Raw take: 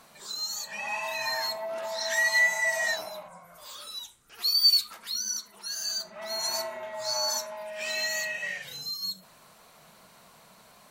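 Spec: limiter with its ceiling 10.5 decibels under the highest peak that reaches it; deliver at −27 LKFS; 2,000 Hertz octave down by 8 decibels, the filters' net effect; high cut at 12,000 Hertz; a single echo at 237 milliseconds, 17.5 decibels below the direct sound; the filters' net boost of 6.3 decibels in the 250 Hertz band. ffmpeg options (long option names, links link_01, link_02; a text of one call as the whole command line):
ffmpeg -i in.wav -af "lowpass=12000,equalizer=frequency=250:width_type=o:gain=8,equalizer=frequency=2000:width_type=o:gain=-8.5,alimiter=limit=-24dB:level=0:latency=1,aecho=1:1:237:0.133,volume=6dB" out.wav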